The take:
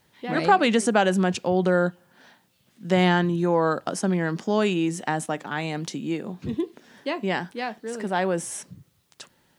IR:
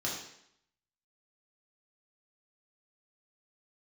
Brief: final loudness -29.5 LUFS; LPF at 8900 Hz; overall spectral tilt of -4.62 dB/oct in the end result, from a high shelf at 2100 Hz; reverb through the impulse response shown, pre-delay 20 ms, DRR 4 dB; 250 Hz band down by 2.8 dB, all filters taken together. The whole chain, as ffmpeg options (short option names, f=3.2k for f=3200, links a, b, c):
-filter_complex "[0:a]lowpass=8.9k,equalizer=f=250:t=o:g=-4.5,highshelf=f=2.1k:g=3.5,asplit=2[a][b];[1:a]atrim=start_sample=2205,adelay=20[c];[b][c]afir=irnorm=-1:irlink=0,volume=-9dB[d];[a][d]amix=inputs=2:normalize=0,volume=-6dB"